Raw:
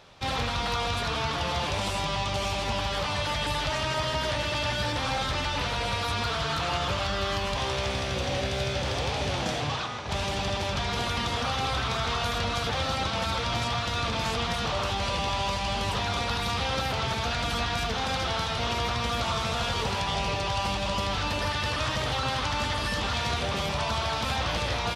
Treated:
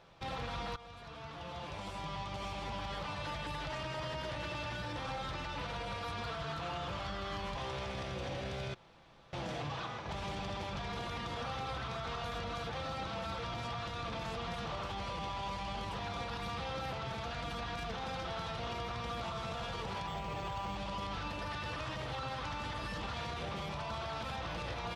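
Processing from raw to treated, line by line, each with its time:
0.76–3.51 s: fade in, from -18 dB
8.74–9.33 s: room tone
20.07–20.76 s: decimation joined by straight lines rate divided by 4×
whole clip: treble shelf 3.2 kHz -9.5 dB; comb 6 ms, depth 32%; peak limiter -25.5 dBFS; trim -6 dB

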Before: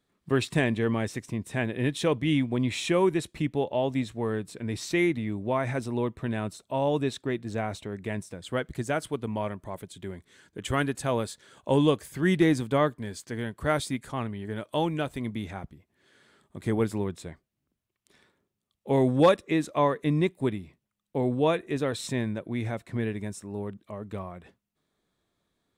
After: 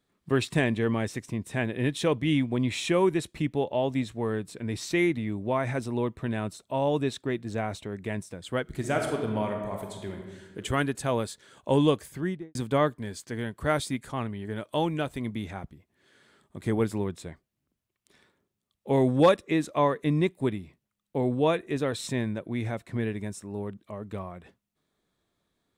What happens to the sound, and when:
8.62–10.58 s: reverb throw, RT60 1.3 s, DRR 2 dB
12.00–12.55 s: studio fade out

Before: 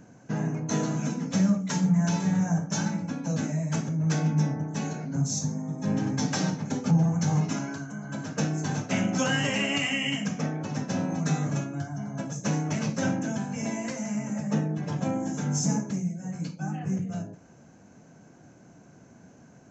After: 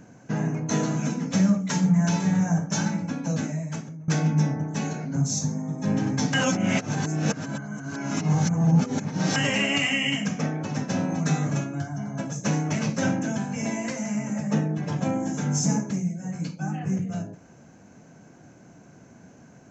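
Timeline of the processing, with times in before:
3.27–4.08 s: fade out, to -21.5 dB
6.34–9.36 s: reverse
whole clip: peaking EQ 2.2 kHz +2 dB; trim +2.5 dB

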